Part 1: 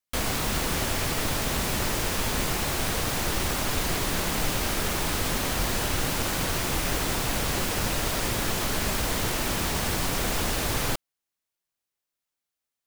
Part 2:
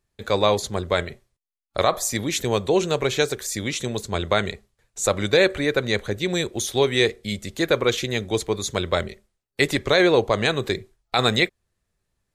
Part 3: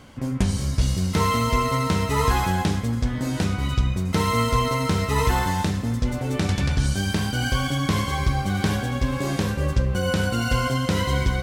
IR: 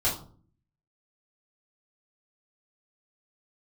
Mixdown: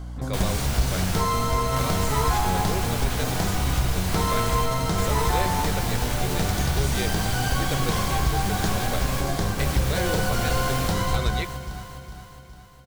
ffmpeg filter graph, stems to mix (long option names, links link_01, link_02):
-filter_complex "[0:a]adelay=200,volume=-5dB,asplit=3[link_01][link_02][link_03];[link_02]volume=-12dB[link_04];[link_03]volume=-10dB[link_05];[1:a]volume=-12dB,asplit=2[link_06][link_07];[2:a]equalizer=frequency=700:width=3.8:gain=11.5,aeval=exprs='val(0)+0.0251*(sin(2*PI*60*n/s)+sin(2*PI*2*60*n/s)/2+sin(2*PI*3*60*n/s)/3+sin(2*PI*4*60*n/s)/4+sin(2*PI*5*60*n/s)/5)':channel_layout=same,equalizer=frequency=100:width_type=o:width=0.67:gain=-4,equalizer=frequency=250:width_type=o:width=0.67:gain=-8,equalizer=frequency=630:width_type=o:width=0.67:gain=-6,equalizer=frequency=2500:width_type=o:width=0.67:gain=-10,volume=0.5dB,asplit=2[link_08][link_09];[link_09]volume=-12dB[link_10];[link_07]apad=whole_len=576094[link_11];[link_01][link_11]sidechaingate=range=-33dB:threshold=-54dB:ratio=16:detection=peak[link_12];[3:a]atrim=start_sample=2205[link_13];[link_04][link_13]afir=irnorm=-1:irlink=0[link_14];[link_05][link_10]amix=inputs=2:normalize=0,aecho=0:1:411|822|1233|1644|2055|2466|2877|3288:1|0.52|0.27|0.141|0.0731|0.038|0.0198|0.0103[link_15];[link_12][link_06][link_08][link_14][link_15]amix=inputs=5:normalize=0,acompressor=threshold=-21dB:ratio=1.5"